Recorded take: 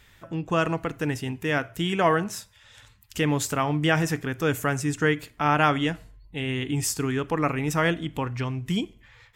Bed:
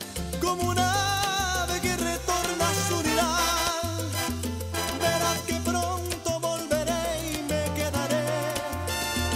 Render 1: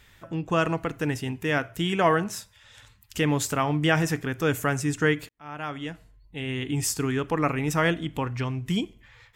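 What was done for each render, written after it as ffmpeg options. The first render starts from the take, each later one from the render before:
-filter_complex "[0:a]asplit=2[a][b];[a]atrim=end=5.29,asetpts=PTS-STARTPTS,afade=t=out:st=5.286:d=0.004:c=hsin[c];[b]atrim=start=5.29,asetpts=PTS-STARTPTS,afade=t=in:d=1.59[d];[c][d]concat=n=2:v=0:a=1"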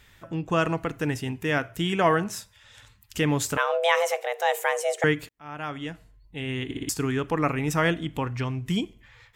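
-filter_complex "[0:a]asettb=1/sr,asplit=3[a][b][c];[a]atrim=end=3.574[d];[b]atrim=start=3.57:end=5.04,asetpts=PTS-STARTPTS,afade=t=in:d=0.004:c=qsin,afade=t=out:st=1.466:d=0.004:c=qsin,afreqshift=350[e];[c]atrim=start=5.036[f];[d][e]acrossfade=d=0.004:c1=hsin:c2=qsin[g];[g][f]acrossfade=d=0.004:c1=qsin:c2=hsin,asplit=5[h][i][j][k][l];[h]atrim=end=6.712[m];[i]atrim=start=6.648:end=6.712[n];[j]atrim=start=6.648:end=6.712[o];[k]atrim=start=6.648:end=6.712[p];[l]atrim=start=6.888[q];[m][n]acrossfade=d=0.004:c1=hsin:c2=hsin[r];[r][o]acrossfade=d=0.004:c1=hsin:c2=hsin[s];[s][p]acrossfade=d=0.004:c1=hsin:c2=hsin[t];[t][q]acrossfade=d=0.004:c1=hsin:c2=hsin"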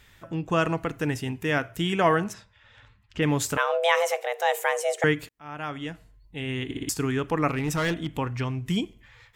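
-filter_complex "[0:a]asplit=3[a][b][c];[a]afade=t=out:st=2.32:d=0.02[d];[b]lowpass=2.6k,afade=t=in:st=2.32:d=0.02,afade=t=out:st=3.21:d=0.02[e];[c]afade=t=in:st=3.21:d=0.02[f];[d][e][f]amix=inputs=3:normalize=0,asettb=1/sr,asplit=3[g][h][i];[g]atrim=end=7.504[j];[h]atrim=start=7.5:end=8.11,asetpts=PTS-STARTPTS,afade=t=in:d=0.004:c=qsin,afade=t=out:st=0.606:d=0.004:c=qsin,asoftclip=type=hard:threshold=-21.5dB[k];[i]atrim=start=8.106[l];[j][k]acrossfade=d=0.004:c1=hsin:c2=qsin[m];[m][l]acrossfade=d=0.004:c1=qsin:c2=hsin"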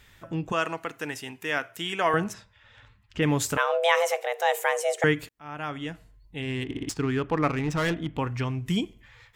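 -filter_complex "[0:a]asettb=1/sr,asplit=3[a][b][c];[a]atrim=end=0.524[d];[b]atrim=start=0.52:end=2.14,asetpts=PTS-STARTPTS,afade=t=in:d=0.004:c=qsin,afade=t=out:st=1.616:d=0.004:c=qsin,highpass=f=740:p=1[e];[c]atrim=start=2.136[f];[d][e]acrossfade=d=0.004:c1=hsin:c2=qsin[g];[g][f]acrossfade=d=0.004:c1=qsin:c2=hsin,asettb=1/sr,asplit=3[h][i][j];[h]atrim=end=6.424[k];[i]atrim=start=6.42:end=8.19,asetpts=PTS-STARTPTS,afade=t=in:d=0.004:c=qsin,afade=t=out:st=1.766:d=0.004:c=qsin,adynamicsmooth=sensitivity=4:basefreq=2.7k[l];[j]atrim=start=8.186[m];[k][l]acrossfade=d=0.004:c1=hsin:c2=qsin[n];[n][m]acrossfade=d=0.004:c1=qsin:c2=hsin"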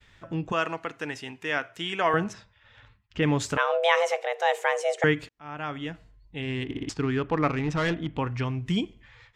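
-af "lowpass=5.8k,agate=range=-33dB:threshold=-54dB:ratio=3:detection=peak"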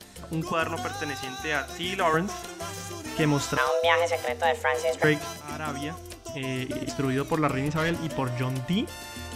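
-filter_complex "[1:a]volume=-11dB[a];[0:a][a]amix=inputs=2:normalize=0"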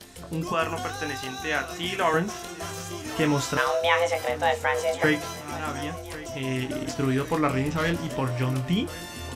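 -filter_complex "[0:a]asplit=2[a][b];[b]adelay=23,volume=-7dB[c];[a][c]amix=inputs=2:normalize=0,aecho=1:1:1100|2200|3300|4400:0.133|0.0693|0.0361|0.0188"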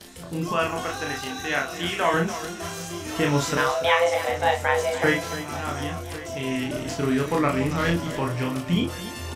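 -af "aecho=1:1:34.99|288.6:0.708|0.251"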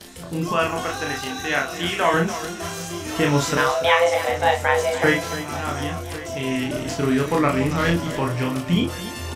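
-af "volume=3dB"

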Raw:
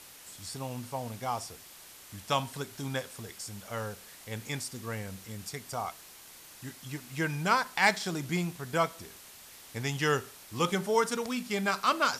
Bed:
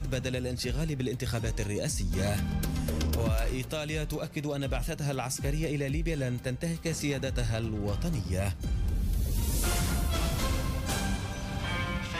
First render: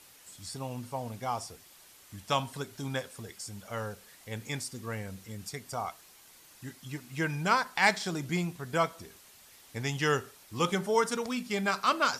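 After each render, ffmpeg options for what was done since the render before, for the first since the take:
-af "afftdn=nr=6:nf=-51"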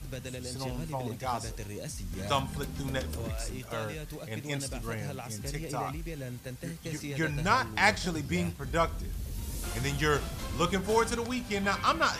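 -filter_complex "[1:a]volume=-8dB[a];[0:a][a]amix=inputs=2:normalize=0"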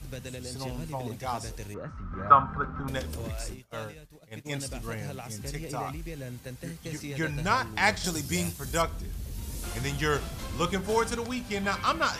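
-filter_complex "[0:a]asettb=1/sr,asplit=3[a][b][c];[a]atrim=end=1.744[d];[b]atrim=start=1.74:end=2.88,asetpts=PTS-STARTPTS,afade=t=in:d=0.004:c=qsin,afade=t=out:st=1.136:d=0.004:c=qsin,lowpass=f=1.3k:t=q:w=14[e];[c]atrim=start=2.876[f];[d][e]acrossfade=d=0.004:c1=hsin:c2=qsin[g];[g][f]acrossfade=d=0.004:c1=qsin:c2=hsin,asplit=3[h][i][j];[h]afade=t=out:st=3.53:d=0.02[k];[i]agate=range=-33dB:threshold=-32dB:ratio=3:release=100:detection=peak,afade=t=in:st=3.53:d=0.02,afade=t=out:st=4.45:d=0.02[l];[j]afade=t=in:st=4.45:d=0.02[m];[k][l][m]amix=inputs=3:normalize=0,asettb=1/sr,asplit=3[n][o][p];[n]atrim=end=8.044[q];[o]atrim=start=8.04:end=8.82,asetpts=PTS-STARTPTS,afade=t=in:d=0.004:c=qsin,afade=t=out:st=0.776:d=0.004:c=qsin,bass=f=250:g=0,treble=f=4k:g=13[r];[p]atrim=start=8.816[s];[q][r]acrossfade=d=0.004:c1=hsin:c2=qsin[t];[t][s]acrossfade=d=0.004:c1=qsin:c2=hsin"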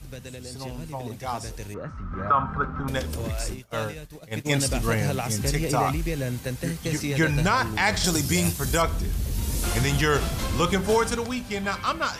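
-af "dynaudnorm=f=140:g=21:m=12dB,alimiter=limit=-11.5dB:level=0:latency=1:release=66"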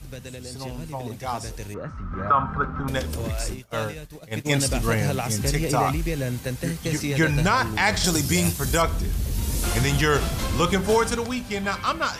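-af "volume=1.5dB"

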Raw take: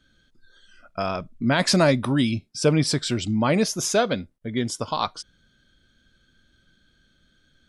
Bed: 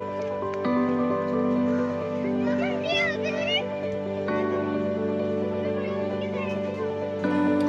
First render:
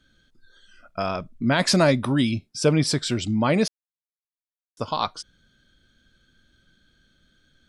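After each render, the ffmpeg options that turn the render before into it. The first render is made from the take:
-filter_complex "[0:a]asplit=3[a][b][c];[a]atrim=end=3.68,asetpts=PTS-STARTPTS,afade=t=out:st=3.676:d=0.004:c=hsin[d];[b]atrim=start=3.68:end=4.77,asetpts=PTS-STARTPTS,volume=0[e];[c]atrim=start=4.77,asetpts=PTS-STARTPTS,afade=t=in:d=0.004:c=hsin[f];[d][e][f]concat=n=3:v=0:a=1"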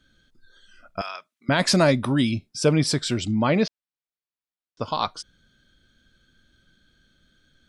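-filter_complex "[0:a]asettb=1/sr,asplit=3[a][b][c];[a]atrim=end=1.014[d];[b]atrim=start=1.01:end=1.49,asetpts=PTS-STARTPTS,afade=t=in:d=0.004:c=qsin,afade=t=out:st=0.476:d=0.004:c=qsin,highpass=1.4k[e];[c]atrim=start=1.486[f];[d][e]acrossfade=d=0.004:c1=hsin:c2=qsin[g];[g][f]acrossfade=d=0.004:c1=qsin:c2=hsin,asettb=1/sr,asplit=3[h][i][j];[h]atrim=end=3.324[k];[i]atrim=start=3.32:end=4.85,asetpts=PTS-STARTPTS,afade=t=in:d=0.004:c=qsin,afade=t=out:st=1.526:d=0.004:c=qsin,lowpass=f=5k:w=0.5412,lowpass=f=5k:w=1.3066[l];[j]atrim=start=4.846[m];[k][l]acrossfade=d=0.004:c1=hsin:c2=qsin[n];[n][m]acrossfade=d=0.004:c1=qsin:c2=hsin"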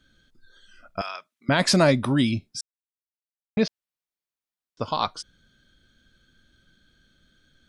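-filter_complex "[0:a]asplit=3[a][b][c];[a]atrim=end=2.61,asetpts=PTS-STARTPTS,afade=t=out:st=2.606:d=0.004:c=hsin[d];[b]atrim=start=2.61:end=3.57,asetpts=PTS-STARTPTS,volume=0[e];[c]atrim=start=3.57,asetpts=PTS-STARTPTS,afade=t=in:d=0.004:c=hsin[f];[d][e][f]concat=n=3:v=0:a=1"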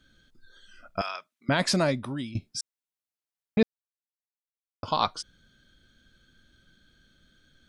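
-filter_complex "[0:a]asplit=4[a][b][c][d];[a]atrim=end=2.35,asetpts=PTS-STARTPTS,afade=t=out:st=1.05:d=1.3:silence=0.125893[e];[b]atrim=start=2.35:end=3.63,asetpts=PTS-STARTPTS,afade=t=in:d=0.004:c=hsin:silence=0.125893,afade=t=out:st=1.276:d=0.004:c=hsin[f];[c]atrim=start=3.63:end=4.83,asetpts=PTS-STARTPTS,volume=0[g];[d]atrim=start=4.83,asetpts=PTS-STARTPTS,afade=t=in:d=0.004:c=hsin[h];[e][f][g][h]concat=n=4:v=0:a=1"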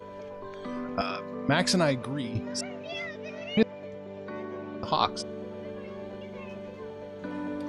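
-filter_complex "[1:a]volume=-12dB[a];[0:a][a]amix=inputs=2:normalize=0"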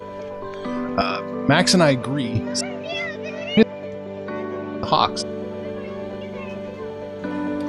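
-af "volume=9dB,alimiter=limit=-3dB:level=0:latency=1"

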